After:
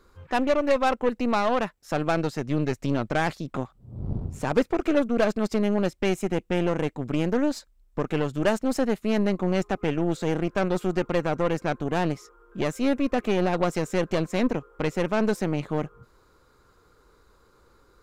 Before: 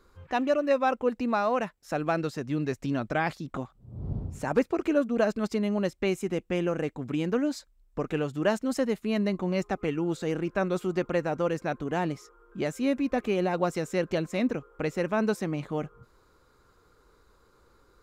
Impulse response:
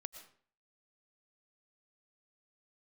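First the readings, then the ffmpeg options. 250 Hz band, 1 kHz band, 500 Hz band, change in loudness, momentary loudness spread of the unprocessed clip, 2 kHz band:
+3.0 dB, +3.0 dB, +2.5 dB, +3.0 dB, 8 LU, +2.5 dB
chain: -af "acontrast=66,aeval=exprs='0.501*(cos(1*acos(clip(val(0)/0.501,-1,1)))-cos(1*PI/2))+0.0447*(cos(8*acos(clip(val(0)/0.501,-1,1)))-cos(8*PI/2))':c=same,volume=-4dB"

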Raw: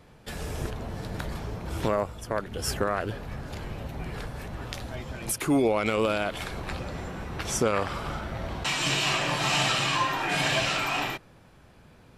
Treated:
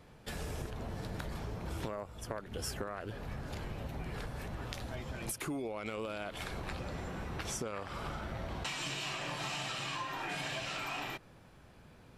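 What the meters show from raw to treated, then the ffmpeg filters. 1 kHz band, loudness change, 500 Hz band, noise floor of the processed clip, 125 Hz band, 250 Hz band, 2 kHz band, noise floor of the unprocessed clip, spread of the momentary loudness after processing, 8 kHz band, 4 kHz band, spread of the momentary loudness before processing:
-11.5 dB, -11.5 dB, -12.5 dB, -58 dBFS, -8.0 dB, -11.5 dB, -11.5 dB, -54 dBFS, 6 LU, -10.5 dB, -12.0 dB, 14 LU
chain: -af "acompressor=threshold=-32dB:ratio=10,volume=-3.5dB"

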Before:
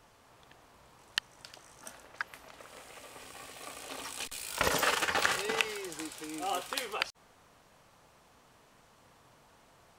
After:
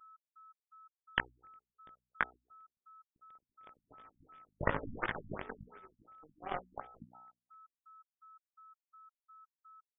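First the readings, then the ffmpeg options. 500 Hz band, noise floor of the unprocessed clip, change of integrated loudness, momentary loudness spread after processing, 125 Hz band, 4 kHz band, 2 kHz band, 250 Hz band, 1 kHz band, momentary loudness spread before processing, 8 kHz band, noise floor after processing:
-7.0 dB, -63 dBFS, -6.5 dB, 23 LU, +2.5 dB, -16.5 dB, -6.5 dB, -4.0 dB, -7.0 dB, 21 LU, under -40 dB, under -85 dBFS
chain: -filter_complex "[0:a]adynamicequalizer=threshold=0.00355:dfrequency=750:dqfactor=4.9:tfrequency=750:tqfactor=4.9:attack=5:release=100:ratio=0.375:range=2:mode=cutabove:tftype=bell,asplit=6[a][b][c][d][e][f];[b]adelay=260,afreqshift=30,volume=-21.5dB[g];[c]adelay=520,afreqshift=60,volume=-25.5dB[h];[d]adelay=780,afreqshift=90,volume=-29.5dB[i];[e]adelay=1040,afreqshift=120,volume=-33.5dB[j];[f]adelay=1300,afreqshift=150,volume=-37.6dB[k];[a][g][h][i][j][k]amix=inputs=6:normalize=0,asplit=2[l][m];[m]acrusher=bits=4:dc=4:mix=0:aa=0.000001,volume=-4dB[n];[l][n]amix=inputs=2:normalize=0,aeval=exprs='0.447*(cos(1*acos(clip(val(0)/0.447,-1,1)))-cos(1*PI/2))+0.00631*(cos(5*acos(clip(val(0)/0.447,-1,1)))-cos(5*PI/2))+0.0631*(cos(7*acos(clip(val(0)/0.447,-1,1)))-cos(7*PI/2))+0.01*(cos(8*acos(clip(val(0)/0.447,-1,1)))-cos(8*PI/2))':c=same,areverse,acompressor=threshold=-31dB:ratio=12,areverse,flanger=delay=17.5:depth=3.6:speed=1,aeval=exprs='sgn(val(0))*max(abs(val(0))-0.001,0)':c=same,equalizer=f=2.8k:w=3.1:g=-11.5,bandreject=f=61.37:t=h:w=4,bandreject=f=122.74:t=h:w=4,bandreject=f=184.11:t=h:w=4,bandreject=f=245.48:t=h:w=4,bandreject=f=306.85:t=h:w=4,bandreject=f=368.22:t=h:w=4,bandreject=f=429.59:t=h:w=4,bandreject=f=490.96:t=h:w=4,bandreject=f=552.33:t=h:w=4,bandreject=f=613.7:t=h:w=4,bandreject=f=675.07:t=h:w=4,bandreject=f=736.44:t=h:w=4,bandreject=f=797.81:t=h:w=4,bandreject=f=859.18:t=h:w=4,bandreject=f=920.55:t=h:w=4,acompressor=mode=upward:threshold=-59dB:ratio=2.5,aeval=exprs='val(0)+0.000447*sin(2*PI*1300*n/s)':c=same,afftfilt=real='re*lt(b*sr/1024,250*pow(3700/250,0.5+0.5*sin(2*PI*2.8*pts/sr)))':imag='im*lt(b*sr/1024,250*pow(3700/250,0.5+0.5*sin(2*PI*2.8*pts/sr)))':win_size=1024:overlap=0.75,volume=12.5dB"

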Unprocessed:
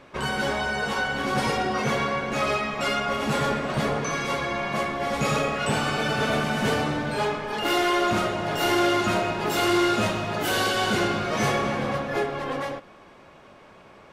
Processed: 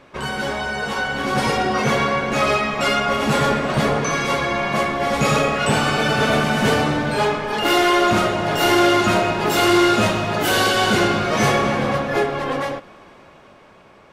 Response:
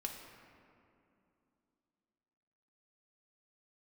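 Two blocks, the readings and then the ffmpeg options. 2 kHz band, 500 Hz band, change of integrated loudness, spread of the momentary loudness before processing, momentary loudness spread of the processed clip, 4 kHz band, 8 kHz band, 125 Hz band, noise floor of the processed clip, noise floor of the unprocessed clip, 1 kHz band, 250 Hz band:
+6.0 dB, +6.5 dB, +6.5 dB, 5 LU, 8 LU, +6.0 dB, +6.5 dB, +6.5 dB, -48 dBFS, -50 dBFS, +6.0 dB, +6.5 dB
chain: -af "dynaudnorm=f=290:g=9:m=5dB,volume=1.5dB"

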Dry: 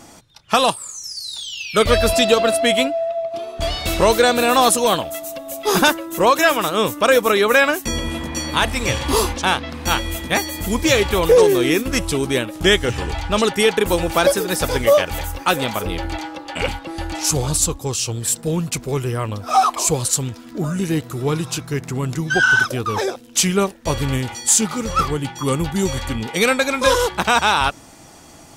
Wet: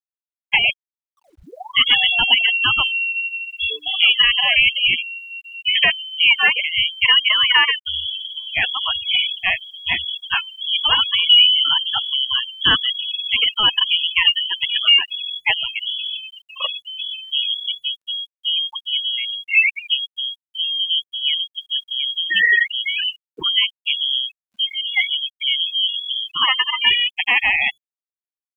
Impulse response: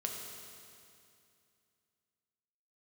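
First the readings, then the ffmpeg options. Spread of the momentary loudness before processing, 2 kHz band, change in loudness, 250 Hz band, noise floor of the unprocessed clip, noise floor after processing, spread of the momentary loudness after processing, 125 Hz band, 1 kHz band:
11 LU, +3.0 dB, +1.5 dB, -23.0 dB, -43 dBFS, under -85 dBFS, 11 LU, under -20 dB, -9.5 dB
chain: -af "afftfilt=real='re*gte(hypot(re,im),0.224)':imag='im*gte(hypot(re,im),0.224)':win_size=1024:overlap=0.75,lowpass=f=2.9k:t=q:w=0.5098,lowpass=f=2.9k:t=q:w=0.6013,lowpass=f=2.9k:t=q:w=0.9,lowpass=f=2.9k:t=q:w=2.563,afreqshift=-3400,acrusher=bits=10:mix=0:aa=0.000001"

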